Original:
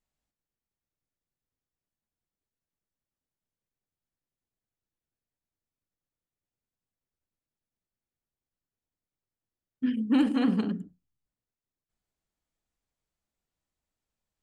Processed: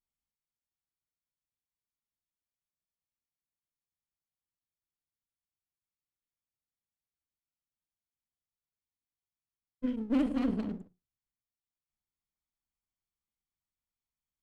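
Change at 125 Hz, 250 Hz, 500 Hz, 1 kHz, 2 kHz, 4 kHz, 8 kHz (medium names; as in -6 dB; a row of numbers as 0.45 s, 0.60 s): -7.0 dB, -5.5 dB, -2.0 dB, -6.0 dB, -8.5 dB, -10.5 dB, no reading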